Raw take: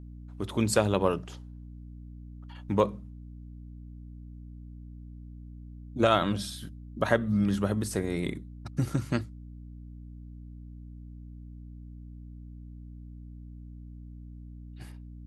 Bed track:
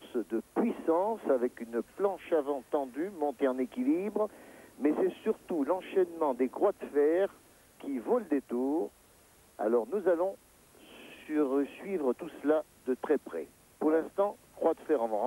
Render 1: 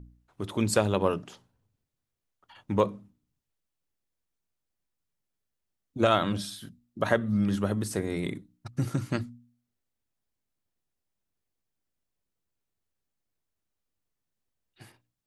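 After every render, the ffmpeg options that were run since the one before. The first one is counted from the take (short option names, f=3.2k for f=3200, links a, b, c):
-af "bandreject=f=60:t=h:w=4,bandreject=f=120:t=h:w=4,bandreject=f=180:t=h:w=4,bandreject=f=240:t=h:w=4,bandreject=f=300:t=h:w=4"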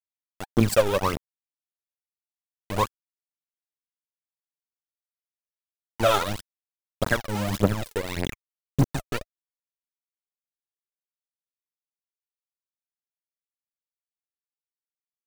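-af "aeval=exprs='val(0)*gte(abs(val(0)),0.0501)':c=same,aphaser=in_gain=1:out_gain=1:delay=2.5:decay=0.7:speed=1.7:type=triangular"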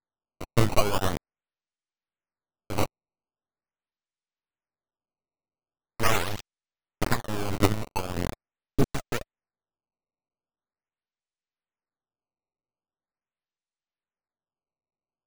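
-af "acrusher=samples=15:mix=1:aa=0.000001:lfo=1:lforange=24:lforate=0.42,aeval=exprs='abs(val(0))':c=same"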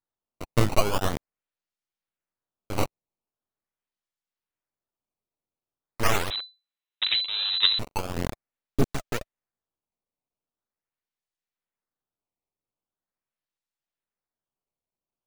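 -filter_complex "[0:a]asettb=1/sr,asplit=3[a][b][c];[a]atrim=end=6.304[d];[b]atrim=start=6.3:end=7.79,asetpts=PTS-STARTPTS,afade=t=in:d=0.004:c=qsin,afade=t=out:st=1.486:d=0.004:c=qsin,lowpass=f=3.4k:t=q:w=0.5098,lowpass=f=3.4k:t=q:w=0.6013,lowpass=f=3.4k:t=q:w=0.9,lowpass=f=3.4k:t=q:w=2.563,afreqshift=-4000[e];[c]atrim=start=7.786[f];[d][e]acrossfade=d=0.004:c1=hsin:c2=qsin[g];[g][f]acrossfade=d=0.004:c1=qsin:c2=hsin"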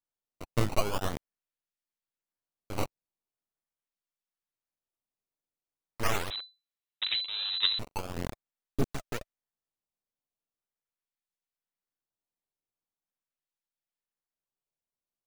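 -af "volume=-6dB"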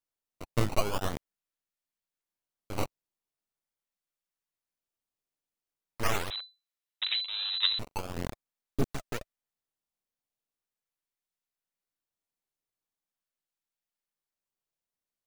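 -filter_complex "[0:a]asettb=1/sr,asplit=3[a][b][c];[a]atrim=end=6.304[d];[b]atrim=start=6.3:end=7.71,asetpts=PTS-STARTPTS,afade=t=in:d=0.004:c=qsin,afade=t=out:st=1.406:d=0.004:c=qsin,highpass=540[e];[c]atrim=start=7.706[f];[d][e]acrossfade=d=0.004:c1=hsin:c2=qsin[g];[g][f]acrossfade=d=0.004:c1=qsin:c2=hsin"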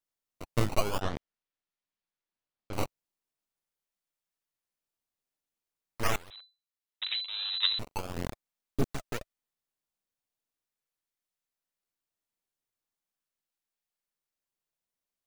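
-filter_complex "[0:a]asettb=1/sr,asplit=3[a][b][c];[a]atrim=end=1.014[d];[b]atrim=start=1.01:end=2.73,asetpts=PTS-STARTPTS,afade=t=in:d=0.004:c=qsin,afade=t=out:st=1.716:d=0.004:c=qsin,lowpass=4.6k[e];[c]atrim=start=2.726[f];[d][e]acrossfade=d=0.004:c1=hsin:c2=qsin[g];[g][f]acrossfade=d=0.004:c1=qsin:c2=hsin,asplit=2[h][i];[h]atrim=end=6.16,asetpts=PTS-STARTPTS,afade=t=out:st=6.156:d=0.004:c=hsin:silence=0.1[j];[i]atrim=start=6.16,asetpts=PTS-STARTPTS,afade=t=in:d=1.94:c=qsin:silence=0.1[k];[j][k]concat=n=2:v=0:a=1"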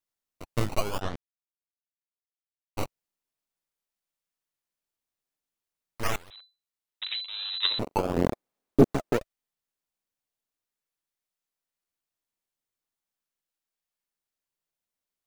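-filter_complex "[0:a]asettb=1/sr,asplit=3[a][b][c];[a]atrim=end=7.654[d];[b]atrim=start=7.65:end=9.21,asetpts=PTS-STARTPTS,afade=t=in:d=0.004:c=qsin,afade=t=out:st=1.556:d=0.004:c=qsin,equalizer=f=380:w=0.34:g=14.5[e];[c]atrim=start=9.206[f];[d][e]acrossfade=d=0.004:c1=hsin:c2=qsin[g];[g][f]acrossfade=d=0.004:c1=qsin:c2=hsin,asplit=3[h][i][j];[h]atrim=end=1.16,asetpts=PTS-STARTPTS,afade=t=out:st=1.156:d=0.004:c=hsin[k];[i]atrim=start=1.16:end=2.77,asetpts=PTS-STARTPTS,volume=0[l];[j]atrim=start=2.77,asetpts=PTS-STARTPTS,afade=t=in:d=0.004:c=hsin[m];[k][l][m]concat=n=3:v=0:a=1"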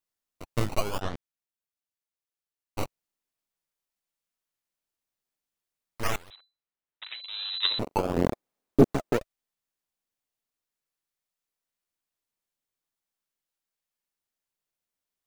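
-filter_complex "[0:a]asettb=1/sr,asplit=3[a][b][c];[a]atrim=end=6.354[d];[b]atrim=start=6.35:end=7.24,asetpts=PTS-STARTPTS,afade=t=in:d=0.004:c=qsin,afade=t=out:st=0.886:d=0.004:c=qsin,lowpass=2.4k[e];[c]atrim=start=7.236[f];[d][e]acrossfade=d=0.004:c1=hsin:c2=qsin[g];[g][f]acrossfade=d=0.004:c1=qsin:c2=hsin"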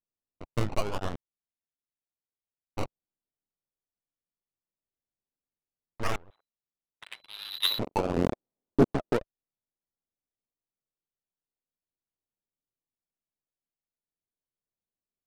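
-af "asoftclip=type=tanh:threshold=-11.5dB,adynamicsmooth=sensitivity=6:basefreq=680"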